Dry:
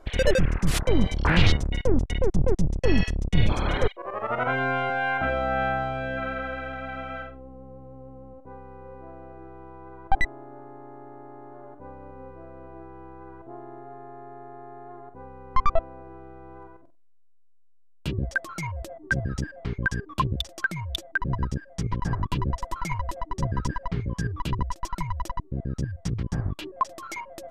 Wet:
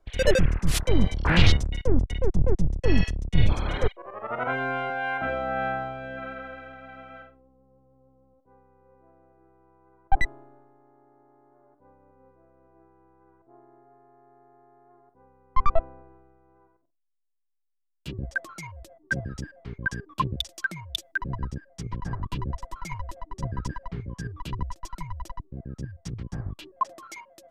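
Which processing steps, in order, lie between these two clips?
three-band expander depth 70%; gain -4 dB

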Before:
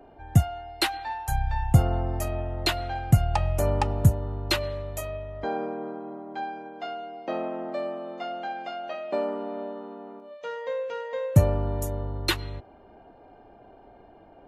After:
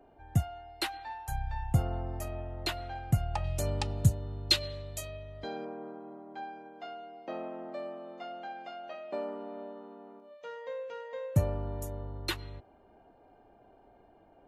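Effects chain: 3.44–5.65 graphic EQ 125/1000/4000/8000 Hz +4/-5/+11/+7 dB; gain -8.5 dB

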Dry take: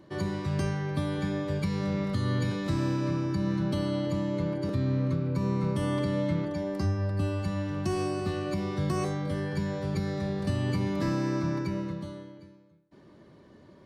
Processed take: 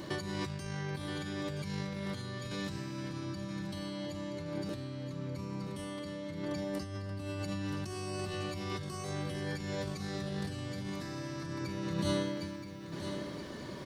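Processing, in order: high shelf 2100 Hz +11 dB; negative-ratio compressor -39 dBFS, ratio -1; on a send: feedback echo 0.975 s, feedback 51%, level -9 dB

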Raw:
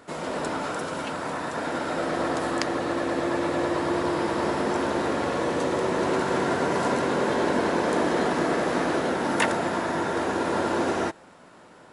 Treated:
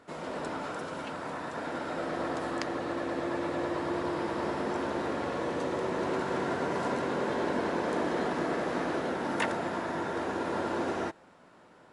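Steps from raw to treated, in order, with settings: high shelf 7000 Hz -8.5 dB; gain -6.5 dB

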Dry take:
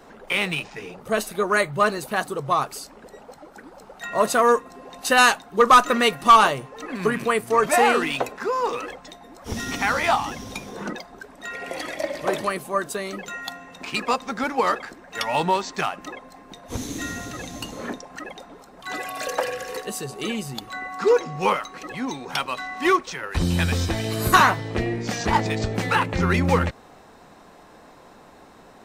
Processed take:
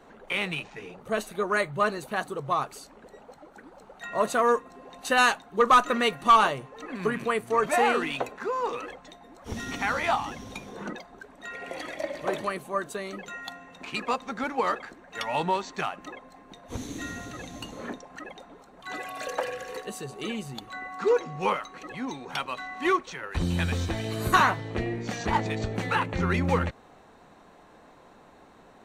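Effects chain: high shelf 8400 Hz -8.5 dB; notch 5100 Hz, Q 7.4; gain -5 dB

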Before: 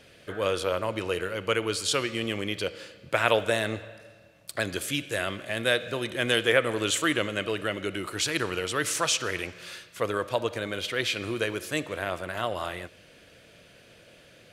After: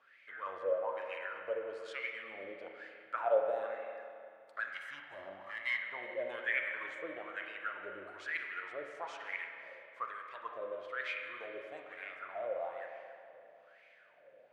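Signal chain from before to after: 4.71–5.82 minimum comb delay 1 ms; in parallel at 0 dB: compressor, threshold -36 dBFS, peak gain reduction 18.5 dB; on the sum: wah 1.1 Hz 530–2200 Hz, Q 9.7; spring tank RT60 2.4 s, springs 31/41 ms, chirp 45 ms, DRR 3 dB; gain -2.5 dB

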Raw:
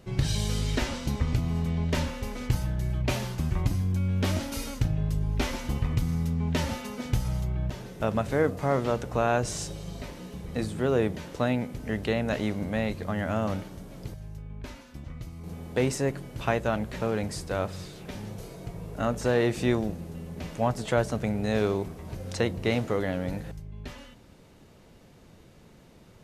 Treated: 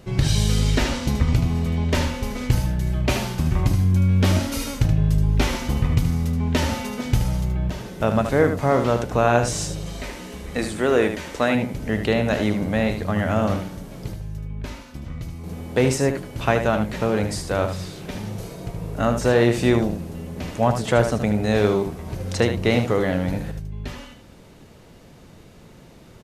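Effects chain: 9.86–11.55 ten-band EQ 125 Hz -11 dB, 2000 Hz +5 dB, 8000 Hz +4 dB; echo 76 ms -8 dB; gain +6.5 dB

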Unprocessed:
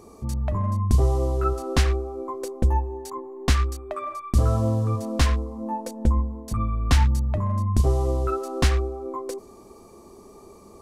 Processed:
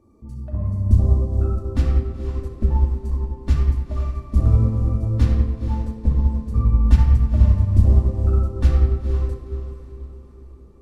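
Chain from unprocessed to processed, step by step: bin magnitudes rounded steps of 15 dB; EQ curve 170 Hz 0 dB, 860 Hz -10 dB, 6300 Hz -16 dB; diffused feedback echo 0.482 s, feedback 47%, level -7 dB; shoebox room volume 2600 m³, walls mixed, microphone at 2.5 m; upward expander 1.5:1, over -27 dBFS; gain +2 dB

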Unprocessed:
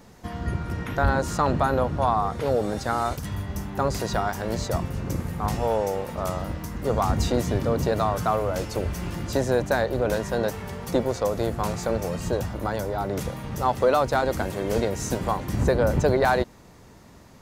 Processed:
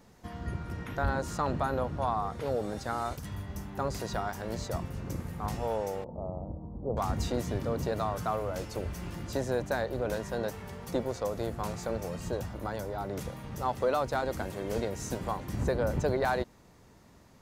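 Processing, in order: 6.04–6.97 steep low-pass 850 Hz 36 dB/oct; gain -8 dB

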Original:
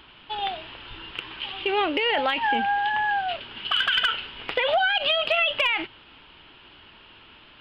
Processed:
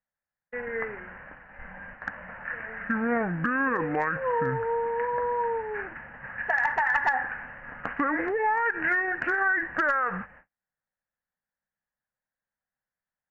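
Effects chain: gate -41 dBFS, range -42 dB; bell 660 Hz -8 dB 0.44 oct; wide varispeed 0.572×; gain -2 dB

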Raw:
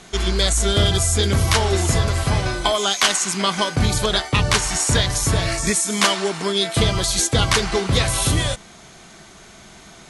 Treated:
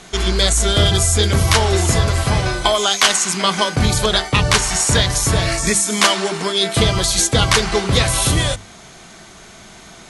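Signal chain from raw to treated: notches 50/100/150/200/250/300/350/400 Hz; gain +3.5 dB

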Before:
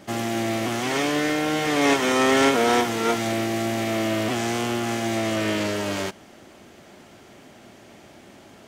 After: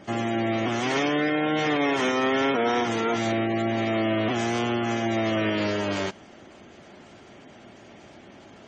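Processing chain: spectral gate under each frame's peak -25 dB strong; limiter -15.5 dBFS, peak gain reduction 6.5 dB

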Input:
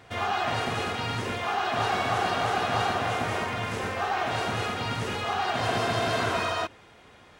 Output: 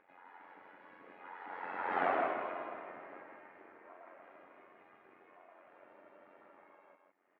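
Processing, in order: Doppler pass-by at 2.05, 53 m/s, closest 5.8 m; Chebyshev band-pass 270–2100 Hz, order 3; AM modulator 90 Hz, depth 70%; upward compressor, threshold -57 dBFS; on a send: echo 0.16 s -5 dB

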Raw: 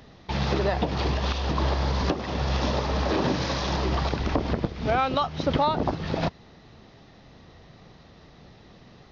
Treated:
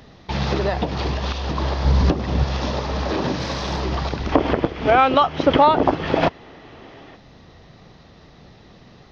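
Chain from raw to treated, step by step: vocal rider within 4 dB 2 s; 1.85–2.44 low shelf 260 Hz +10 dB; 3.4–3.8 GSM buzz -42 dBFS; 4.32–7.16 spectral gain 250–3500 Hz +8 dB; gain +1.5 dB

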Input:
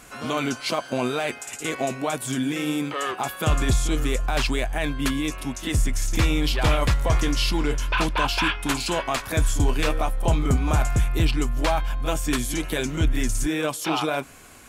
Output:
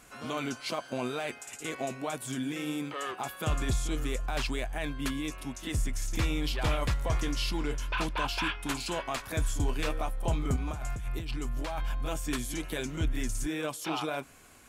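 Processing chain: 10.56–12.12 negative-ratio compressor -24 dBFS, ratio -1; gain -8.5 dB

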